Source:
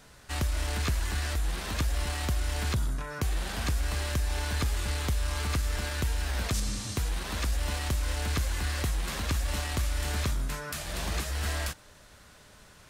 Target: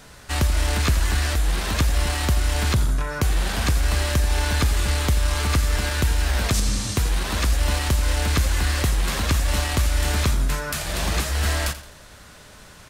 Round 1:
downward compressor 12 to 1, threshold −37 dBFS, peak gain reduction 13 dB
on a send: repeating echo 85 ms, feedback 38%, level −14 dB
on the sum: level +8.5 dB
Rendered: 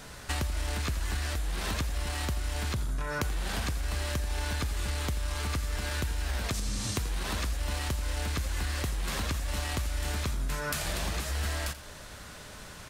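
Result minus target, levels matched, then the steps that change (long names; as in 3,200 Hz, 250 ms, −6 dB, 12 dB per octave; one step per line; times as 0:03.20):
downward compressor: peak gain reduction +13 dB
remove: downward compressor 12 to 1, threshold −37 dBFS, peak gain reduction 13 dB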